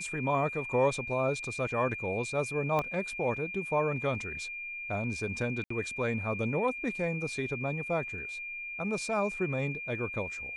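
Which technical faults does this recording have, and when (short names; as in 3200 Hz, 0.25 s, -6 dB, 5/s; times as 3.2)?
tone 2400 Hz -37 dBFS
2.79 pop -18 dBFS
5.64–5.7 gap 64 ms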